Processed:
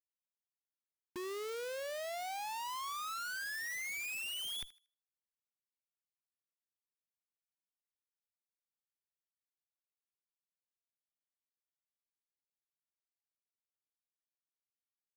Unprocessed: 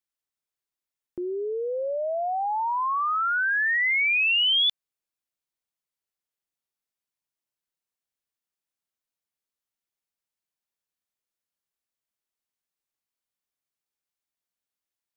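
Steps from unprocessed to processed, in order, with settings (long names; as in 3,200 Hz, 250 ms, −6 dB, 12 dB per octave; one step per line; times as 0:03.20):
source passing by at 0:04.63, 6 m/s, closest 4.2 metres
low-pass filter 4,500 Hz 24 dB per octave
reversed playback
downward compressor 8 to 1, threshold −33 dBFS, peak gain reduction 12 dB
reversed playback
low-pass filter sweep 110 Hz → 2,000 Hz, 0:00.41–0:03.10
harmonic generator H 5 −44 dB, 6 −24 dB, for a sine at −22 dBFS
comparator with hysteresis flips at −46.5 dBFS
on a send: feedback echo with a high-pass in the loop 78 ms, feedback 27%, high-pass 830 Hz, level −16.5 dB
on the sum: level −3.5 dB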